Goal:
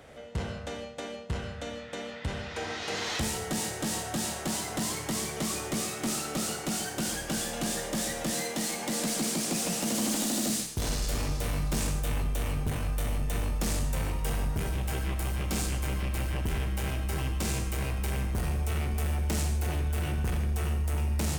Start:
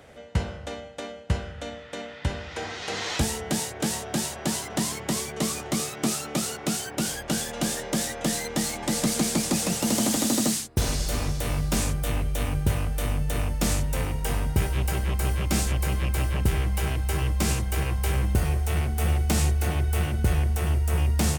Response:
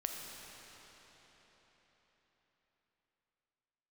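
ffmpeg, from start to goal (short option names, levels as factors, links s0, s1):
-filter_complex "[0:a]asettb=1/sr,asplit=3[s0][s1][s2];[s0]atrim=end=8.304[s3];[s1]atrim=start=8.3:end=10.5,asetpts=PTS-STARTPTS,afade=t=in:d=0.004:c=qsin,afade=t=out:st=2.196:d=0.004:c=qsin,highpass=180[s4];[s2]atrim=start=10.496[s5];[s3][s4]acrossfade=d=0.004:c1=hsin:c2=qsin[s6];[s6][s5]acrossfade=d=0.004:c1=qsin:c2=hsin,asoftclip=type=tanh:threshold=0.0596[s7];[1:a]atrim=start_sample=2205,afade=t=out:st=0.21:d=0.01,atrim=end_sample=9702[s8];[s7][s8]afir=irnorm=-1:irlink=0"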